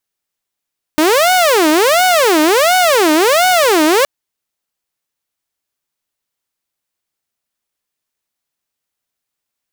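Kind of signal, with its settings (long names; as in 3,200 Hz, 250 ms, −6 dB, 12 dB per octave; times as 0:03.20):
siren wail 304–742 Hz 1.4 per second saw −6 dBFS 3.07 s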